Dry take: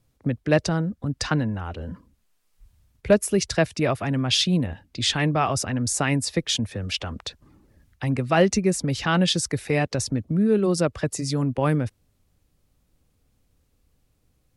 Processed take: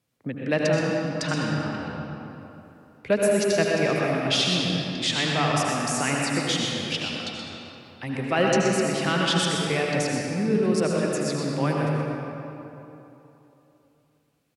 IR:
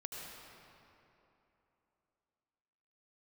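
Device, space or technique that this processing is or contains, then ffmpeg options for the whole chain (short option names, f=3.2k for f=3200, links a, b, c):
PA in a hall: -filter_complex "[0:a]highpass=170,equalizer=f=2.4k:t=o:w=1.4:g=4,aecho=1:1:124:0.355[a];[1:a]atrim=start_sample=2205[b];[a][b]afir=irnorm=-1:irlink=0"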